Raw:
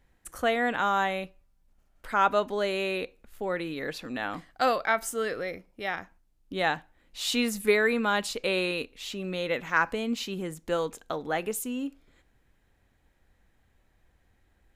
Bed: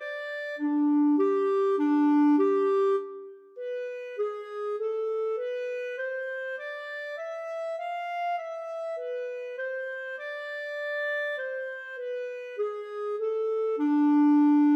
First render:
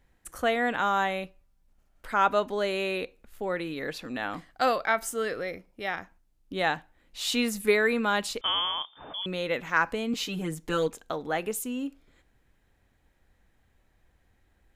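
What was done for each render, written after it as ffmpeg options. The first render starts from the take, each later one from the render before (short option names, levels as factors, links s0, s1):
-filter_complex "[0:a]asettb=1/sr,asplit=3[s0][s1][s2];[s0]atrim=end=8.414[s3];[s1]atrim=start=8.41:end=9.26,asetpts=PTS-STARTPTS,afade=t=in:d=0.004:c=qsin,afade=t=out:st=0.846:d=0.004:c=qsin,lowpass=f=3100:t=q:w=0.5098,lowpass=f=3100:t=q:w=0.6013,lowpass=f=3100:t=q:w=0.9,lowpass=f=3100:t=q:w=2.563,afreqshift=-3600[s4];[s2]atrim=start=9.256[s5];[s3][s4]acrossfade=d=0.004:c1=hsin:c2=qsin[s6];[s6][s5]acrossfade=d=0.004:c1=qsin:c2=hsin,asettb=1/sr,asplit=3[s7][s8][s9];[s7]atrim=end=10.134[s10];[s8]atrim=start=10.13:end=10.88,asetpts=PTS-STARTPTS,afade=t=in:d=0.004:c=qsin,afade=t=out:st=0.746:d=0.004:c=qsin,aecho=1:1:6.6:0.98,atrim=end_sample=33075[s11];[s9]atrim=start=10.876[s12];[s10][s11]acrossfade=d=0.004:c1=hsin:c2=qsin[s13];[s13][s12]acrossfade=d=0.004:c1=qsin:c2=hsin"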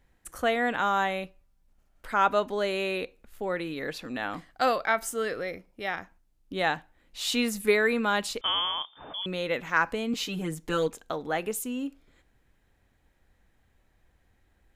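-af anull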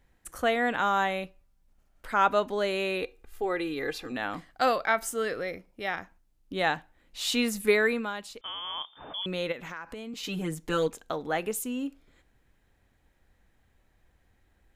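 -filter_complex "[0:a]asettb=1/sr,asplit=3[s0][s1][s2];[s0]atrim=end=3.024[s3];[s1]atrim=start=3.02:end=4.12,asetpts=PTS-STARTPTS,afade=t=in:d=0.004:c=qsin,afade=t=out:st=1.096:d=0.004:c=qsin,aecho=1:1:2.5:0.65,atrim=end_sample=48510[s4];[s2]atrim=start=4.116[s5];[s3][s4]acrossfade=d=0.004:c1=hsin:c2=qsin[s6];[s6][s5]acrossfade=d=0.004:c1=qsin:c2=hsin,asplit=3[s7][s8][s9];[s7]afade=t=out:st=9.51:d=0.02[s10];[s8]acompressor=threshold=0.0158:ratio=6:attack=3.2:release=140:knee=1:detection=peak,afade=t=in:st=9.51:d=0.02,afade=t=out:st=10.23:d=0.02[s11];[s9]afade=t=in:st=10.23:d=0.02[s12];[s10][s11][s12]amix=inputs=3:normalize=0,asplit=3[s13][s14][s15];[s13]atrim=end=8.14,asetpts=PTS-STARTPTS,afade=t=out:st=7.84:d=0.3:silence=0.298538[s16];[s14]atrim=start=8.14:end=8.61,asetpts=PTS-STARTPTS,volume=0.299[s17];[s15]atrim=start=8.61,asetpts=PTS-STARTPTS,afade=t=in:d=0.3:silence=0.298538[s18];[s16][s17][s18]concat=n=3:v=0:a=1"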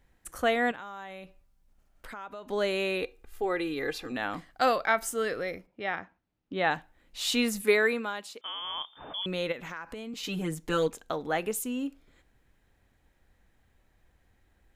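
-filter_complex "[0:a]asettb=1/sr,asplit=3[s0][s1][s2];[s0]atrim=end=0.714[s3];[s1]atrim=start=0.71:end=2.49,asetpts=PTS-STARTPTS,afade=t=in:d=0.004:c=qsin,afade=t=out:st=1.776:d=0.004:c=qsin,acompressor=threshold=0.01:ratio=5:attack=3.2:release=140:knee=1:detection=peak[s4];[s2]atrim=start=2.486[s5];[s3][s4]acrossfade=d=0.004:c1=hsin:c2=qsin[s6];[s6][s5]acrossfade=d=0.004:c1=qsin:c2=hsin,asplit=3[s7][s8][s9];[s7]afade=t=out:st=5.66:d=0.02[s10];[s8]highpass=100,lowpass=3200,afade=t=in:st=5.66:d=0.02,afade=t=out:st=6.7:d=0.02[s11];[s9]afade=t=in:st=6.7:d=0.02[s12];[s10][s11][s12]amix=inputs=3:normalize=0,asettb=1/sr,asplit=3[s13][s14][s15];[s13]atrim=end=7.644[s16];[s14]atrim=start=7.64:end=8.62,asetpts=PTS-STARTPTS,afade=t=in:d=0.004:c=qsin,afade=t=out:st=0.976:d=0.004:c=qsin,highpass=230[s17];[s15]atrim=start=8.616[s18];[s16][s17]acrossfade=d=0.004:c1=hsin:c2=qsin[s19];[s19][s18]acrossfade=d=0.004:c1=qsin:c2=hsin"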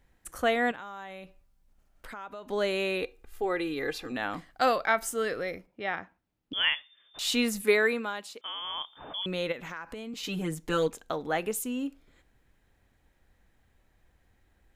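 -filter_complex "[0:a]asettb=1/sr,asplit=3[s0][s1][s2];[s0]atrim=end=6.534[s3];[s1]atrim=start=6.53:end=7.19,asetpts=PTS-STARTPTS,afade=t=in:d=0.004:c=qsin,afade=t=out:st=0.656:d=0.004:c=qsin,lowpass=f=3100:t=q:w=0.5098,lowpass=f=3100:t=q:w=0.6013,lowpass=f=3100:t=q:w=0.9,lowpass=f=3100:t=q:w=2.563,afreqshift=-3600[s4];[s2]atrim=start=7.186[s5];[s3][s4]acrossfade=d=0.004:c1=hsin:c2=qsin[s6];[s6][s5]acrossfade=d=0.004:c1=qsin:c2=hsin"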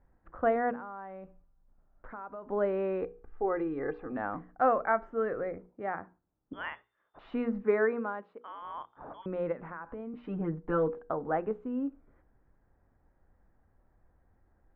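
-af "lowpass=f=1400:w=0.5412,lowpass=f=1400:w=1.3066,bandreject=f=60:t=h:w=6,bandreject=f=120:t=h:w=6,bandreject=f=180:t=h:w=6,bandreject=f=240:t=h:w=6,bandreject=f=300:t=h:w=6,bandreject=f=360:t=h:w=6,bandreject=f=420:t=h:w=6,bandreject=f=480:t=h:w=6"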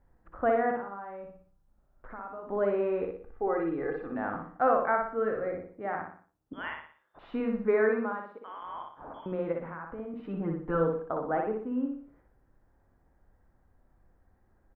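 -af "aecho=1:1:60|120|180|240|300:0.668|0.274|0.112|0.0461|0.0189"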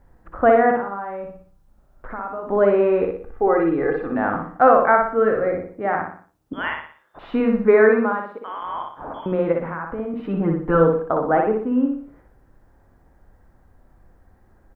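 -af "volume=3.76,alimiter=limit=0.708:level=0:latency=1"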